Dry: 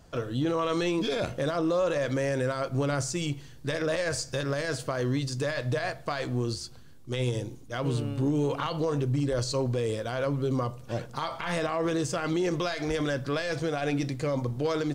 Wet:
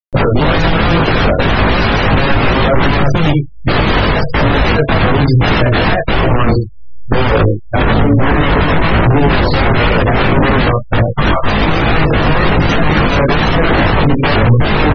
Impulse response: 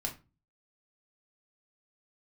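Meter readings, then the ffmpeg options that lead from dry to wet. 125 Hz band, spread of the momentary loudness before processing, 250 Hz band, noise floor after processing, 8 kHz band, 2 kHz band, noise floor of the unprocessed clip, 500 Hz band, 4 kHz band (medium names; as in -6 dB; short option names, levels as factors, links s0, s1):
+19.0 dB, 6 LU, +16.5 dB, -23 dBFS, no reading, +21.0 dB, -47 dBFS, +14.0 dB, +18.0 dB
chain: -filter_complex "[0:a]bandreject=f=111.6:t=h:w=4,bandreject=f=223.2:t=h:w=4,bandreject=f=334.8:t=h:w=4,bandreject=f=446.4:t=h:w=4,agate=range=0.0316:threshold=0.0251:ratio=16:detection=peak,lowpass=4200,acrossover=split=350|3000[s0][s1][s2];[s0]acompressor=threshold=0.00794:ratio=8[s3];[s3][s1][s2]amix=inputs=3:normalize=0,asplit=2[s4][s5];[s5]aecho=0:1:84:0.299[s6];[s4][s6]amix=inputs=2:normalize=0,aeval=exprs='(mod(42.2*val(0)+1,2)-1)/42.2':c=same,aemphasis=mode=reproduction:type=riaa,flanger=delay=18:depth=2.2:speed=1.1,afftfilt=real='re*gte(hypot(re,im),0.00562)':imag='im*gte(hypot(re,im),0.00562)':win_size=1024:overlap=0.75,lowshelf=f=69:g=-4.5,acompressor=mode=upward:threshold=0.00891:ratio=2.5,alimiter=level_in=47.3:limit=0.891:release=50:level=0:latency=1,volume=0.891"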